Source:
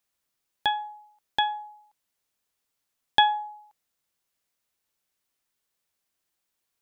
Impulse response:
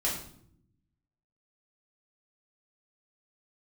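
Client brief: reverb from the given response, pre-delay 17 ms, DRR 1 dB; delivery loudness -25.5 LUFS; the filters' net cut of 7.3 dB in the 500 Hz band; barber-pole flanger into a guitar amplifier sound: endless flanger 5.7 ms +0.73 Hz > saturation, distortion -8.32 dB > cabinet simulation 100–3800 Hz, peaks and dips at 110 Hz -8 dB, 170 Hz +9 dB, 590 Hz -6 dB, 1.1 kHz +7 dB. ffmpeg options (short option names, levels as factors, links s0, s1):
-filter_complex "[0:a]equalizer=f=500:t=o:g=-7,asplit=2[s0][s1];[1:a]atrim=start_sample=2205,adelay=17[s2];[s1][s2]afir=irnorm=-1:irlink=0,volume=0.398[s3];[s0][s3]amix=inputs=2:normalize=0,asplit=2[s4][s5];[s5]adelay=5.7,afreqshift=0.73[s6];[s4][s6]amix=inputs=2:normalize=1,asoftclip=threshold=0.0891,highpass=100,equalizer=f=110:t=q:w=4:g=-8,equalizer=f=170:t=q:w=4:g=9,equalizer=f=590:t=q:w=4:g=-6,equalizer=f=1100:t=q:w=4:g=7,lowpass=f=3800:w=0.5412,lowpass=f=3800:w=1.3066,volume=2.11"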